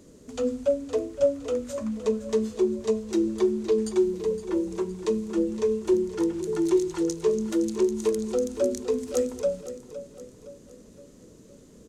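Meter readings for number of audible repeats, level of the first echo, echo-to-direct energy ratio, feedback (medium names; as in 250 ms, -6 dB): 4, -13.0 dB, -12.0 dB, 45%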